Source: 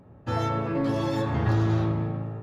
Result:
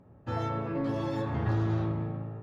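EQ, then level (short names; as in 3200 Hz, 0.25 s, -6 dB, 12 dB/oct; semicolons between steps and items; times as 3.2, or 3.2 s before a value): high shelf 4300 Hz -8 dB; -5.0 dB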